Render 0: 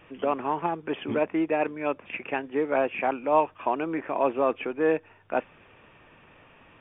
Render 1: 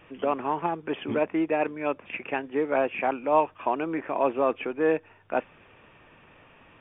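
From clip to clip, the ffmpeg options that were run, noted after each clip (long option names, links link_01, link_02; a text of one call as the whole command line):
ffmpeg -i in.wav -af anull out.wav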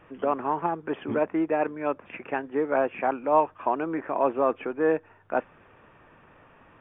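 ffmpeg -i in.wav -af "highshelf=frequency=2000:width_type=q:width=1.5:gain=-6" out.wav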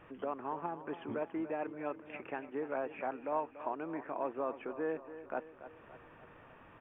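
ffmpeg -i in.wav -filter_complex "[0:a]acompressor=threshold=-50dB:ratio=1.5,asplit=2[link_01][link_02];[link_02]aecho=0:1:287|574|861|1148|1435|1722:0.224|0.121|0.0653|0.0353|0.019|0.0103[link_03];[link_01][link_03]amix=inputs=2:normalize=0,volume=-2.5dB" out.wav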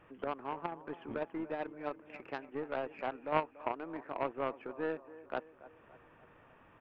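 ffmpeg -i in.wav -af "aeval=exprs='0.0841*(cos(1*acos(clip(val(0)/0.0841,-1,1)))-cos(1*PI/2))+0.0211*(cos(3*acos(clip(val(0)/0.0841,-1,1)))-cos(3*PI/2))+0.0015*(cos(4*acos(clip(val(0)/0.0841,-1,1)))-cos(4*PI/2))':channel_layout=same,volume=8dB" out.wav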